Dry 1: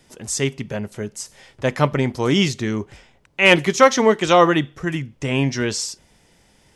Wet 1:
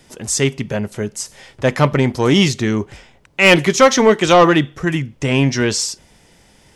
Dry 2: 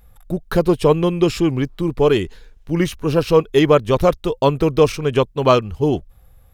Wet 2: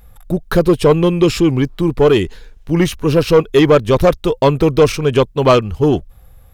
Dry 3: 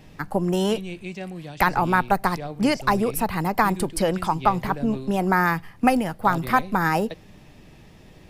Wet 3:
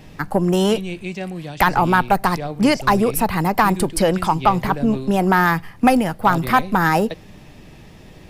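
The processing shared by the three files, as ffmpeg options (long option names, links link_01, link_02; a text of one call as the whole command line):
ffmpeg -i in.wav -af "acontrast=71,volume=-1dB" out.wav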